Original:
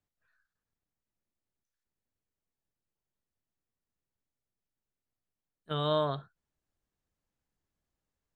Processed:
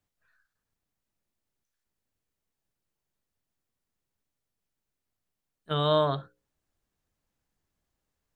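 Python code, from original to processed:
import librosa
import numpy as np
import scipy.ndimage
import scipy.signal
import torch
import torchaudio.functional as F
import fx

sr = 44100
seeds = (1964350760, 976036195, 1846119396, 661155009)

y = fx.hum_notches(x, sr, base_hz=60, count=9)
y = y * 10.0 ** (5.0 / 20.0)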